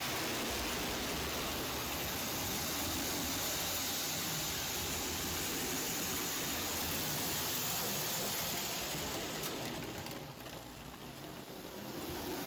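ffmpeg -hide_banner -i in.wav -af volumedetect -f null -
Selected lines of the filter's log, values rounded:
mean_volume: -38.4 dB
max_volume: -29.6 dB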